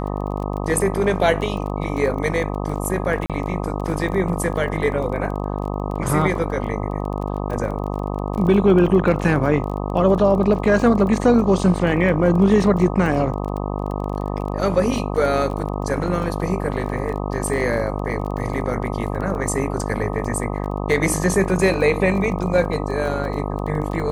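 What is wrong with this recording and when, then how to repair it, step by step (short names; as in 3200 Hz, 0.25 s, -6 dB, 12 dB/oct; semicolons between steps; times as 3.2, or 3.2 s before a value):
buzz 50 Hz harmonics 25 -25 dBFS
crackle 21/s -28 dBFS
3.26–3.3 gap 37 ms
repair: de-click; de-hum 50 Hz, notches 25; interpolate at 3.26, 37 ms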